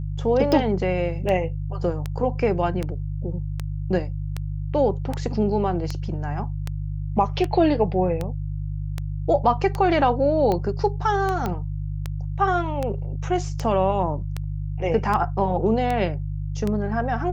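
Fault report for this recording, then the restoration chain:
hum 50 Hz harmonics 3 -28 dBFS
tick 78 rpm -13 dBFS
11.46 s: pop -13 dBFS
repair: de-click; de-hum 50 Hz, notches 3

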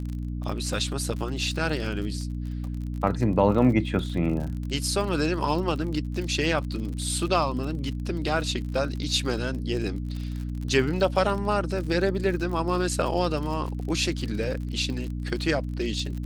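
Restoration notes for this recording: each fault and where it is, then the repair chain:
crackle 46 per s -32 dBFS
hum 60 Hz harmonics 5 -31 dBFS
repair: de-click; de-hum 60 Hz, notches 5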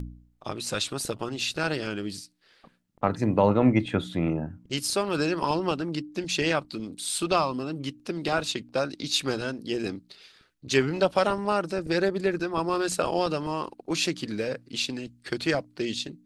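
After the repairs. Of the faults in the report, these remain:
nothing left

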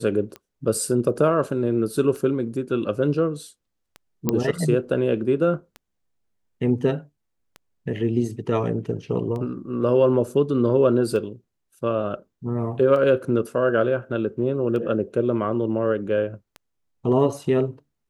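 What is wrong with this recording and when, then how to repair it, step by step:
tick 33 1/3 rpm -22 dBFS
4.29 s: pop -7 dBFS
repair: de-click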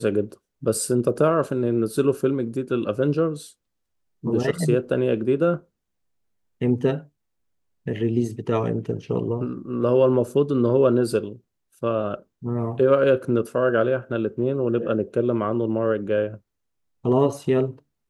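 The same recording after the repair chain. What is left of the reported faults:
nothing left

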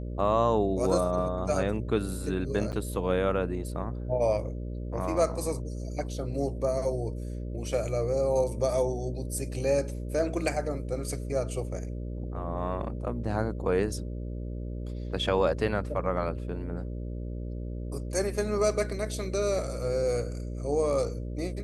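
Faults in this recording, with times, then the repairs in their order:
buzz 60 Hz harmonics 10 -35 dBFS
2.72–2.73 s: dropout 6.8 ms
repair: de-hum 60 Hz, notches 10; interpolate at 2.72 s, 6.8 ms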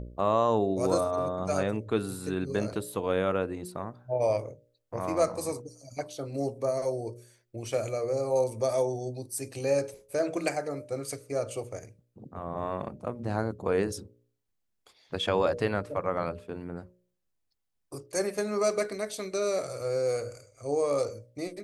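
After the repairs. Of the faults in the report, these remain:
nothing left

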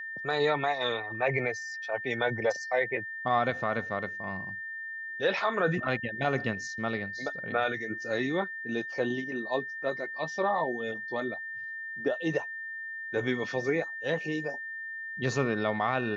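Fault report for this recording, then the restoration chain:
whine 1.8 kHz -36 dBFS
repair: band-stop 1.8 kHz, Q 30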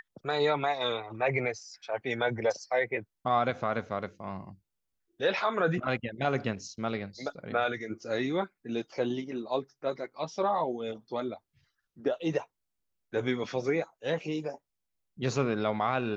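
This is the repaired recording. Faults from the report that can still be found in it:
nothing left

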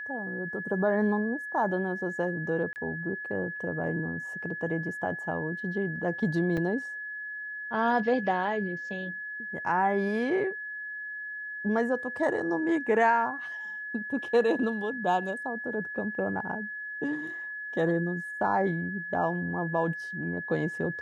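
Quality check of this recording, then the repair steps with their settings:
whine 1.7 kHz -35 dBFS
2.73–2.76 s: dropout 29 ms
6.57–6.58 s: dropout 5.1 ms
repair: band-stop 1.7 kHz, Q 30; interpolate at 2.73 s, 29 ms; interpolate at 6.57 s, 5.1 ms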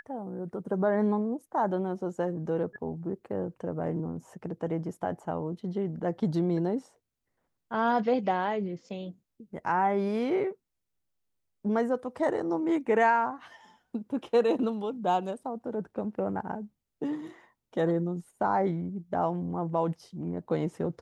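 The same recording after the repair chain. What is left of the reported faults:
nothing left

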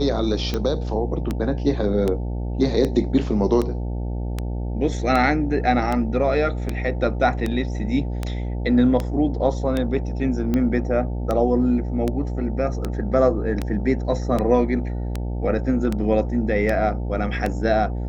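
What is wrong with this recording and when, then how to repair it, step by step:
buzz 60 Hz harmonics 15 -26 dBFS
tick 78 rpm -11 dBFS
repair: de-click; de-hum 60 Hz, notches 15

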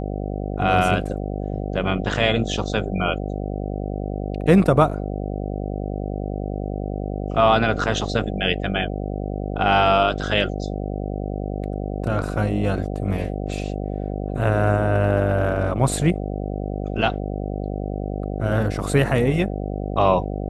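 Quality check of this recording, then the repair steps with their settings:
buzz 50 Hz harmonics 15 -27 dBFS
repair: de-hum 50 Hz, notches 15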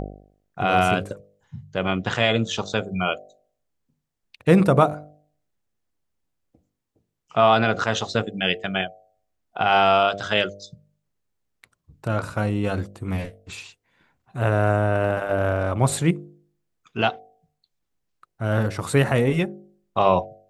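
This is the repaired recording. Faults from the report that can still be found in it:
nothing left

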